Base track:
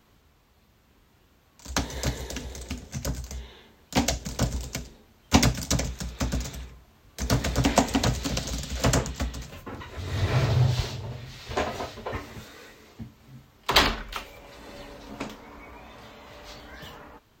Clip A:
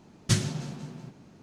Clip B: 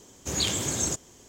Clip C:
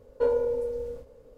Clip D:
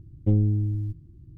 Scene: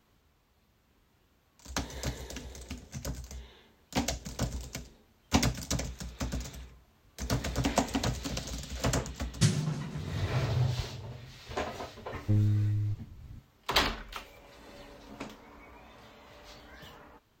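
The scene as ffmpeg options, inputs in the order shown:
-filter_complex "[0:a]volume=0.447[s0];[1:a]equalizer=f=160:t=o:w=0.44:g=7[s1];[4:a]asubboost=boost=6:cutoff=190[s2];[s1]atrim=end=1.42,asetpts=PTS-STARTPTS,volume=0.668,afade=t=in:d=0.004:c=hsin,afade=t=out:st=1.416:d=0.004:c=hsin,adelay=9120[s3];[s2]atrim=end=1.37,asetpts=PTS-STARTPTS,volume=0.398,afade=t=in:d=0.004:c=hsin,afade=t=out:st=1.366:d=0.004:c=hsin,adelay=12020[s4];[s0][s3][s4]amix=inputs=3:normalize=0"

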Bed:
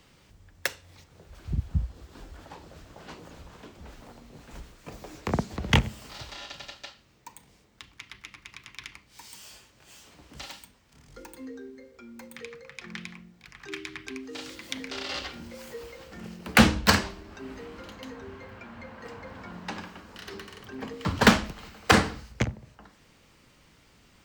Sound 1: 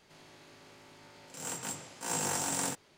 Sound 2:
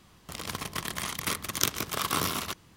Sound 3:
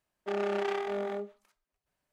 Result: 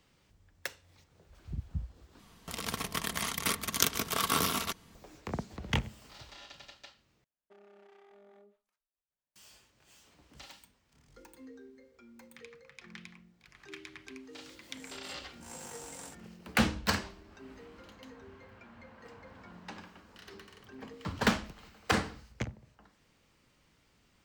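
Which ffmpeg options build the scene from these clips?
-filter_complex "[0:a]volume=0.335[s0];[2:a]aecho=1:1:4.4:0.36[s1];[3:a]acompressor=threshold=0.0126:ratio=6:attack=3.2:release=140:knee=1:detection=peak[s2];[s0]asplit=3[s3][s4][s5];[s3]atrim=end=2.194[s6];[s1]atrim=end=2.76,asetpts=PTS-STARTPTS,volume=0.891[s7];[s4]atrim=start=4.946:end=7.244[s8];[s2]atrim=end=2.12,asetpts=PTS-STARTPTS,volume=0.141[s9];[s5]atrim=start=9.356[s10];[1:a]atrim=end=2.97,asetpts=PTS-STARTPTS,volume=0.2,afade=t=in:d=0.004:c=hsin,afade=t=out:st=2.966:d=0.004:c=hsin,adelay=13400[s11];[s6][s7]acrossfade=d=0.004:c1=hsin:c2=hsin[s12];[s12][s8]acrossfade=d=0.004:c1=hsin:c2=hsin[s13];[s13][s9]acrossfade=d=0.004:c1=hsin:c2=hsin[s14];[s14][s10]acrossfade=d=0.004:c1=hsin:c2=hsin[s15];[s15][s11]amix=inputs=2:normalize=0"

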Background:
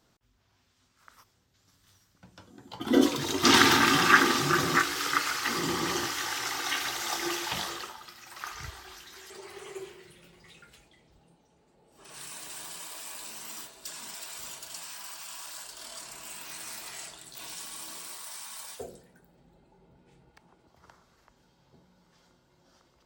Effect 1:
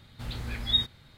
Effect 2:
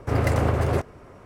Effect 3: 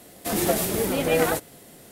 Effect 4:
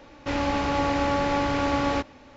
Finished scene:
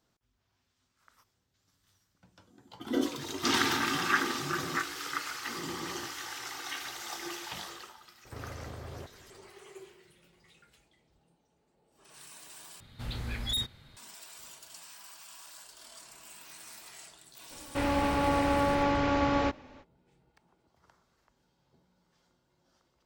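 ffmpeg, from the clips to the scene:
-filter_complex "[0:a]volume=0.398[s0];[2:a]acompressor=threshold=0.0447:ratio=6:attack=3.2:release=140:knee=1:detection=peak[s1];[1:a]asoftclip=type=hard:threshold=0.0447[s2];[4:a]highshelf=f=5300:g=-7[s3];[s0]asplit=2[s4][s5];[s4]atrim=end=12.804[s6];[s2]atrim=end=1.17,asetpts=PTS-STARTPTS,volume=0.891[s7];[s5]atrim=start=13.966[s8];[s1]atrim=end=1.25,asetpts=PTS-STARTPTS,volume=0.237,afade=t=in:d=0.004:c=hsin,afade=t=out:st=1.246:d=0.004:c=hsin,adelay=8250[s9];[s3]atrim=end=2.36,asetpts=PTS-STARTPTS,volume=0.75,afade=t=in:d=0.05,afade=t=out:st=2.31:d=0.05,adelay=17490[s10];[s6][s7]acrossfade=d=0.004:c1=hsin:c2=hsin[s11];[s11][s8]acrossfade=d=0.004:c1=hsin:c2=hsin[s12];[s12][s9][s10]amix=inputs=3:normalize=0"

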